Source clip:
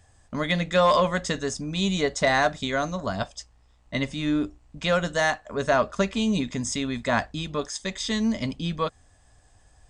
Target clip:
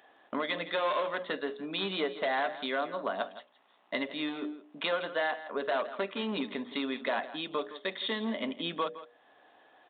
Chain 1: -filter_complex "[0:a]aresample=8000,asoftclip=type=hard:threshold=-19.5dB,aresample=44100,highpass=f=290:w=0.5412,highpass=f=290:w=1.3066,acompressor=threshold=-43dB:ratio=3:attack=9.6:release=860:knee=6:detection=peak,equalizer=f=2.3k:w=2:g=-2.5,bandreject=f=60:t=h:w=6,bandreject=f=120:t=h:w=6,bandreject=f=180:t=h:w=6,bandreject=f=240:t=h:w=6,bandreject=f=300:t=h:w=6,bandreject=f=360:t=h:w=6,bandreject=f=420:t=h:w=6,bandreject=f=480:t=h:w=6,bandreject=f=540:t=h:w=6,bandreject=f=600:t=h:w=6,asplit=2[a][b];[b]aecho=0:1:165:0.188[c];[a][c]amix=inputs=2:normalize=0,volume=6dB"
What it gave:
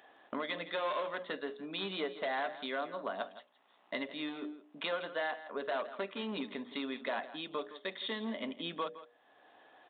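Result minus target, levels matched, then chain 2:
compressor: peak gain reduction +5 dB
-filter_complex "[0:a]aresample=8000,asoftclip=type=hard:threshold=-19.5dB,aresample=44100,highpass=f=290:w=0.5412,highpass=f=290:w=1.3066,acompressor=threshold=-35.5dB:ratio=3:attack=9.6:release=860:knee=6:detection=peak,equalizer=f=2.3k:w=2:g=-2.5,bandreject=f=60:t=h:w=6,bandreject=f=120:t=h:w=6,bandreject=f=180:t=h:w=6,bandreject=f=240:t=h:w=6,bandreject=f=300:t=h:w=6,bandreject=f=360:t=h:w=6,bandreject=f=420:t=h:w=6,bandreject=f=480:t=h:w=6,bandreject=f=540:t=h:w=6,bandreject=f=600:t=h:w=6,asplit=2[a][b];[b]aecho=0:1:165:0.188[c];[a][c]amix=inputs=2:normalize=0,volume=6dB"

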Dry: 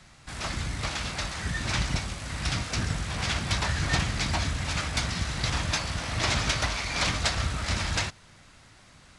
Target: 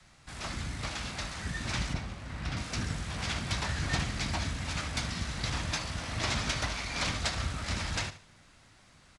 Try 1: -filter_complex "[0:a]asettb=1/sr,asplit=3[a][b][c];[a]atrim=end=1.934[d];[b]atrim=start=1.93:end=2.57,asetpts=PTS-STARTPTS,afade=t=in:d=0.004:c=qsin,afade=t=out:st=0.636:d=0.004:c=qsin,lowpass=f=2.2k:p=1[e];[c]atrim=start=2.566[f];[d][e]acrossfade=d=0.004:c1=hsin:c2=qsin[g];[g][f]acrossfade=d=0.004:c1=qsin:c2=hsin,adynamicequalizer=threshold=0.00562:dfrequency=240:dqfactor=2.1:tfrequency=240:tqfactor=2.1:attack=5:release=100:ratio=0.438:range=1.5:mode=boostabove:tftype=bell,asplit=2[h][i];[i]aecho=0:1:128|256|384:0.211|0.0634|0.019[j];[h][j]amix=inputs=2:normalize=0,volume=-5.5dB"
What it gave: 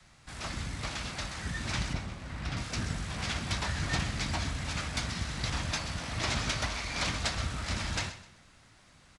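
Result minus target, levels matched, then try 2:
echo 55 ms late
-filter_complex "[0:a]asettb=1/sr,asplit=3[a][b][c];[a]atrim=end=1.934[d];[b]atrim=start=1.93:end=2.57,asetpts=PTS-STARTPTS,afade=t=in:d=0.004:c=qsin,afade=t=out:st=0.636:d=0.004:c=qsin,lowpass=f=2.2k:p=1[e];[c]atrim=start=2.566[f];[d][e]acrossfade=d=0.004:c1=hsin:c2=qsin[g];[g][f]acrossfade=d=0.004:c1=qsin:c2=hsin,adynamicequalizer=threshold=0.00562:dfrequency=240:dqfactor=2.1:tfrequency=240:tqfactor=2.1:attack=5:release=100:ratio=0.438:range=1.5:mode=boostabove:tftype=bell,asplit=2[h][i];[i]aecho=0:1:73|146|219:0.211|0.0634|0.019[j];[h][j]amix=inputs=2:normalize=0,volume=-5.5dB"

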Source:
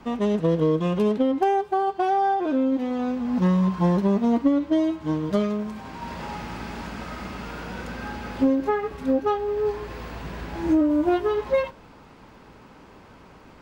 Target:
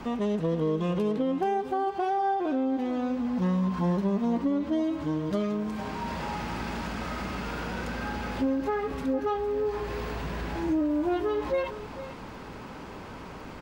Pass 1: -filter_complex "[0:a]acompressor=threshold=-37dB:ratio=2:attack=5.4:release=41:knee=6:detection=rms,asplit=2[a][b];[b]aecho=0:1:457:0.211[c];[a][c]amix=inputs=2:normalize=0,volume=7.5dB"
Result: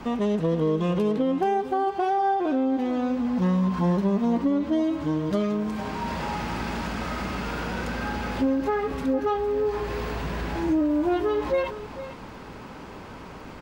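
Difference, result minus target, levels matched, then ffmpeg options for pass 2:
compressor: peak gain reduction -3.5 dB
-filter_complex "[0:a]acompressor=threshold=-44dB:ratio=2:attack=5.4:release=41:knee=6:detection=rms,asplit=2[a][b];[b]aecho=0:1:457:0.211[c];[a][c]amix=inputs=2:normalize=0,volume=7.5dB"

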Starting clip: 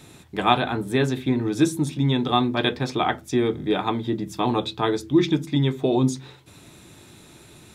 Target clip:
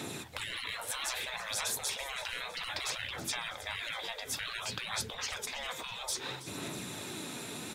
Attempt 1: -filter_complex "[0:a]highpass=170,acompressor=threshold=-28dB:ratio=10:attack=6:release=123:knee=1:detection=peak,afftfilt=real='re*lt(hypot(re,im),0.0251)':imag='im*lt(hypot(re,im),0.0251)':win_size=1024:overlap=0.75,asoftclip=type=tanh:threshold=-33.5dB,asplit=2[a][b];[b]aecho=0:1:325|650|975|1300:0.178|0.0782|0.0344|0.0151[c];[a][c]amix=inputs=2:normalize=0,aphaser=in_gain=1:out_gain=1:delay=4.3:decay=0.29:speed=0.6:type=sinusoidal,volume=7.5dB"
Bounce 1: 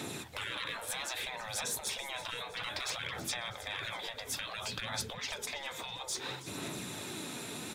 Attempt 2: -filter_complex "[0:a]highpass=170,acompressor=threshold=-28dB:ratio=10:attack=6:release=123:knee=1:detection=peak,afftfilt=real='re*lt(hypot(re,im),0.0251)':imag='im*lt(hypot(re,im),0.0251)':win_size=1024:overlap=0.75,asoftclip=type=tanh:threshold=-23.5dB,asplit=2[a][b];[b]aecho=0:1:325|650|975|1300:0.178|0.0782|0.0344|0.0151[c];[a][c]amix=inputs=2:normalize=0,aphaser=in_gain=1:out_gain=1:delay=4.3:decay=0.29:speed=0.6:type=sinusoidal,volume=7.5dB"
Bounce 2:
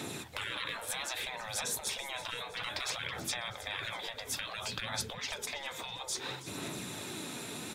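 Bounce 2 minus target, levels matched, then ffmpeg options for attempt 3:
compressor: peak gain reduction +7 dB
-filter_complex "[0:a]highpass=170,acompressor=threshold=-20.5dB:ratio=10:attack=6:release=123:knee=1:detection=peak,afftfilt=real='re*lt(hypot(re,im),0.0251)':imag='im*lt(hypot(re,im),0.0251)':win_size=1024:overlap=0.75,asoftclip=type=tanh:threshold=-23.5dB,asplit=2[a][b];[b]aecho=0:1:325|650|975|1300:0.178|0.0782|0.0344|0.0151[c];[a][c]amix=inputs=2:normalize=0,aphaser=in_gain=1:out_gain=1:delay=4.3:decay=0.29:speed=0.6:type=sinusoidal,volume=7.5dB"

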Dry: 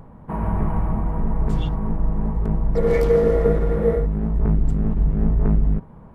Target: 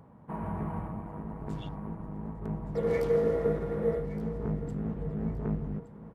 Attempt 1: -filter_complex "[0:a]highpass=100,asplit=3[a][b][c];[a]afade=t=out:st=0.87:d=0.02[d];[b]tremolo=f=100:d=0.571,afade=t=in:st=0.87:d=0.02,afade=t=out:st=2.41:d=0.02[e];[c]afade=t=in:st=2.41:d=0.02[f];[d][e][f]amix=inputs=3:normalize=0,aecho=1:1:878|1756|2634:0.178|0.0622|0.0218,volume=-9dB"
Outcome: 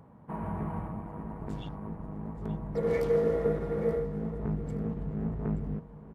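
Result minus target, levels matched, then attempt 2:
echo 0.291 s early
-filter_complex "[0:a]highpass=100,asplit=3[a][b][c];[a]afade=t=out:st=0.87:d=0.02[d];[b]tremolo=f=100:d=0.571,afade=t=in:st=0.87:d=0.02,afade=t=out:st=2.41:d=0.02[e];[c]afade=t=in:st=2.41:d=0.02[f];[d][e][f]amix=inputs=3:normalize=0,aecho=1:1:1169|2338|3507:0.178|0.0622|0.0218,volume=-9dB"

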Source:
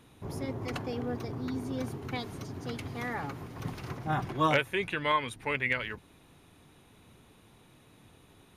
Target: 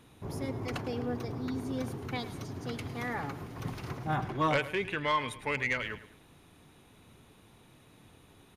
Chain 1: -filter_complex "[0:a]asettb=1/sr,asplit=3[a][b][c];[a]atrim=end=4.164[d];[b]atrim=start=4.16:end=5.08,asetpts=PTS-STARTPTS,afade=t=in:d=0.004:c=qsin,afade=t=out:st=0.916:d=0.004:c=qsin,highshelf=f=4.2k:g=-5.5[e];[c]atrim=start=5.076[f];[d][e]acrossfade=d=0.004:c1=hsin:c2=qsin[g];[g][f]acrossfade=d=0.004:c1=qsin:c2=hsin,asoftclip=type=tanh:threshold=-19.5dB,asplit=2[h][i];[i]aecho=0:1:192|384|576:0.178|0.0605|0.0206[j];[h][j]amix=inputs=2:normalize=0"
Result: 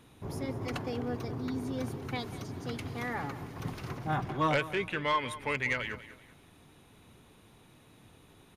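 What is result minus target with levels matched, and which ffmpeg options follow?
echo 85 ms late
-filter_complex "[0:a]asettb=1/sr,asplit=3[a][b][c];[a]atrim=end=4.164[d];[b]atrim=start=4.16:end=5.08,asetpts=PTS-STARTPTS,afade=t=in:d=0.004:c=qsin,afade=t=out:st=0.916:d=0.004:c=qsin,highshelf=f=4.2k:g=-5.5[e];[c]atrim=start=5.076[f];[d][e]acrossfade=d=0.004:c1=hsin:c2=qsin[g];[g][f]acrossfade=d=0.004:c1=qsin:c2=hsin,asoftclip=type=tanh:threshold=-19.5dB,asplit=2[h][i];[i]aecho=0:1:107|214|321:0.178|0.0605|0.0206[j];[h][j]amix=inputs=2:normalize=0"

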